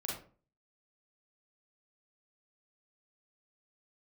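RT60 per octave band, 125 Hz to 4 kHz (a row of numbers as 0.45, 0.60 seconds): 0.50, 0.50, 0.45, 0.40, 0.30, 0.25 seconds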